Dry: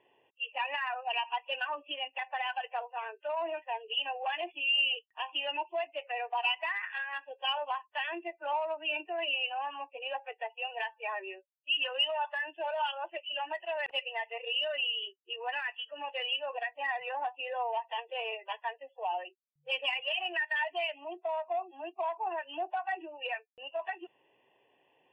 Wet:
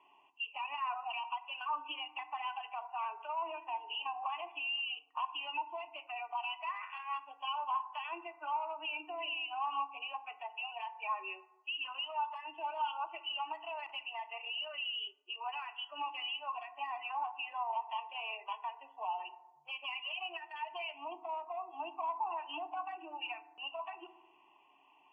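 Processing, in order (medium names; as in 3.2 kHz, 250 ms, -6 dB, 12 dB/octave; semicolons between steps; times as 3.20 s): 3.92–5.25 s: peaking EQ 1.1 kHz +11 dB 1.9 oct; compression 5:1, threshold -39 dBFS, peak gain reduction 16.5 dB; peak limiter -35 dBFS, peak gain reduction 7.5 dB; cabinet simulation 330–7600 Hz, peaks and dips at 500 Hz -4 dB, 1.1 kHz +8 dB, 1.9 kHz -7 dB, 5.3 kHz -8 dB; static phaser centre 2.5 kHz, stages 8; FDN reverb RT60 1.1 s, low-frequency decay 1.5×, high-frequency decay 0.3×, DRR 11 dB; trim +5.5 dB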